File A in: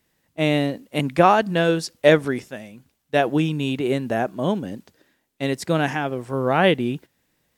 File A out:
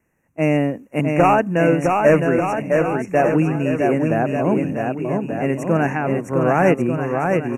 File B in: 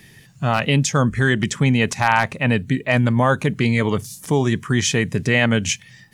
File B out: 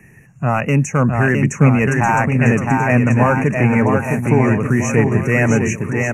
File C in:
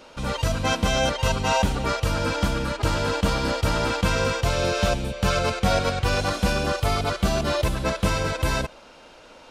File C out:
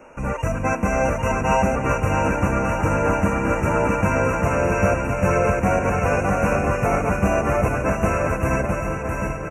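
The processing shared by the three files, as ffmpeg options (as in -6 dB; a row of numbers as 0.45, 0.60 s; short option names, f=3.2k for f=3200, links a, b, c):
-filter_complex "[0:a]highshelf=f=3.3k:g=-9.5,acrossover=split=120[a][b];[a]alimiter=limit=-22.5dB:level=0:latency=1:release=424[c];[b]volume=11dB,asoftclip=hard,volume=-11dB[d];[c][d]amix=inputs=2:normalize=0,aecho=1:1:660|1188|1610|1948|2219:0.631|0.398|0.251|0.158|0.1,aresample=32000,aresample=44100,asuperstop=centerf=4000:order=20:qfactor=1.4,volume=3dB"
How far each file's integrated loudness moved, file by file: +2.5, +3.5, +3.0 LU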